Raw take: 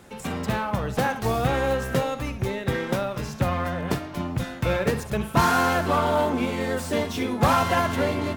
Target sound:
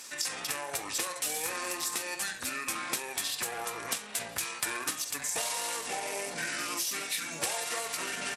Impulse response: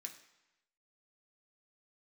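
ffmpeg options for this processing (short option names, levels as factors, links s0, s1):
-filter_complex "[0:a]aderivative,acompressor=threshold=0.00631:ratio=8,asetrate=29433,aresample=44100,atempo=1.49831,asplit=2[s0][s1];[1:a]atrim=start_sample=2205,atrim=end_sample=3087[s2];[s1][s2]afir=irnorm=-1:irlink=0,volume=1.68[s3];[s0][s3]amix=inputs=2:normalize=0,volume=2.82"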